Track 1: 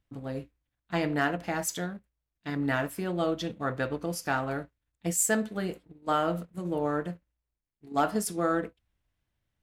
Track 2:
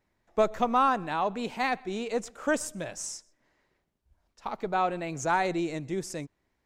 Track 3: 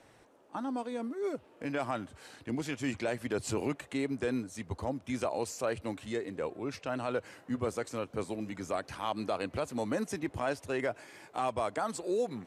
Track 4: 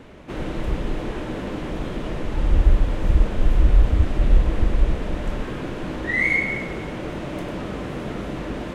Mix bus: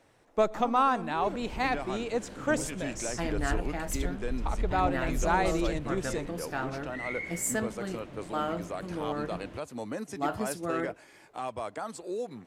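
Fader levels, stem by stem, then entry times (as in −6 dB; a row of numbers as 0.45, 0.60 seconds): −5.0, −1.0, −3.5, −17.0 decibels; 2.25, 0.00, 0.00, 0.85 seconds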